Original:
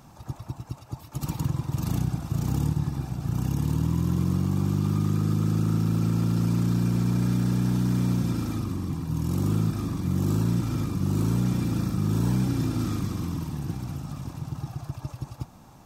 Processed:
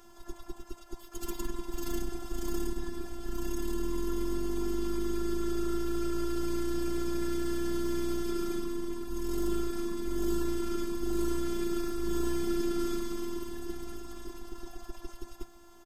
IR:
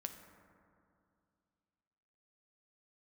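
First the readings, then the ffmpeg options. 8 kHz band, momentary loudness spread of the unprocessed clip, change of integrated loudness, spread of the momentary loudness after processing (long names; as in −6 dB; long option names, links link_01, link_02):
−2.0 dB, 12 LU, −8.0 dB, 15 LU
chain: -af "afftfilt=real='hypot(re,im)*cos(PI*b)':imag='0':win_size=512:overlap=0.75,aecho=1:1:5.2:0.64"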